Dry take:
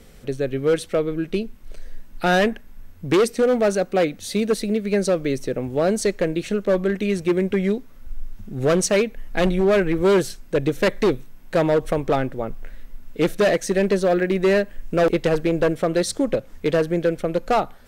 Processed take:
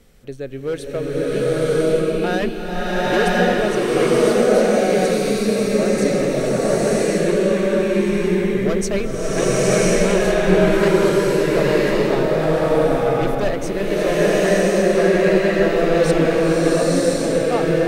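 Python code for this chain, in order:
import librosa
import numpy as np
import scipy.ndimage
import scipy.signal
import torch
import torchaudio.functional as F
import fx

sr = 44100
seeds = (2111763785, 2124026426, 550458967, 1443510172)

y = fx.rev_bloom(x, sr, seeds[0], attack_ms=1050, drr_db=-9.5)
y = y * librosa.db_to_amplitude(-5.5)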